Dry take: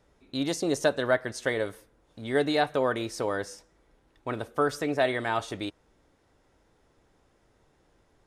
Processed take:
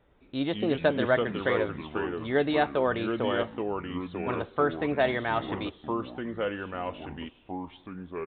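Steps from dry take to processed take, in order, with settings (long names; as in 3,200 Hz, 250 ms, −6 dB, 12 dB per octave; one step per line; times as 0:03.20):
delay with pitch and tempo change per echo 111 ms, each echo −4 semitones, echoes 3, each echo −6 dB
downsampling to 8,000 Hz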